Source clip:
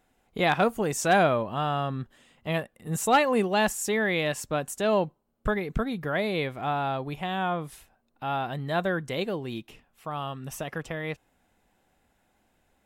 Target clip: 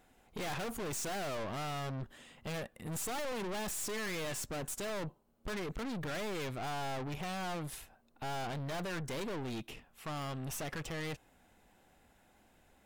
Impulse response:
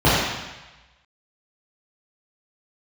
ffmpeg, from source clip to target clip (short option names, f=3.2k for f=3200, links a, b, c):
-af "aeval=exprs='(tanh(126*val(0)+0.45)-tanh(0.45))/126':c=same,volume=4.5dB"